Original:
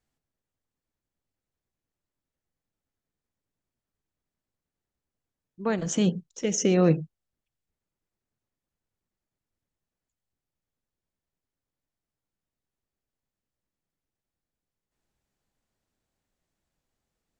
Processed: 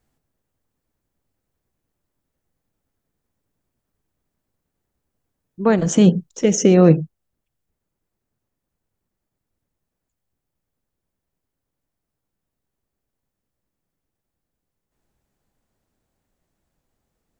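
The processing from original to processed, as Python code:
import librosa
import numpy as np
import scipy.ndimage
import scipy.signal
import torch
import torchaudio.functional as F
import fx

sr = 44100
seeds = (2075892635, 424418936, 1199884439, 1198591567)

p1 = fx.peak_eq(x, sr, hz=4000.0, db=-6.0, octaves=2.9)
p2 = fx.rider(p1, sr, range_db=10, speed_s=0.5)
p3 = p1 + (p2 * 10.0 ** (-2.0 / 20.0))
y = p3 * 10.0 ** (5.5 / 20.0)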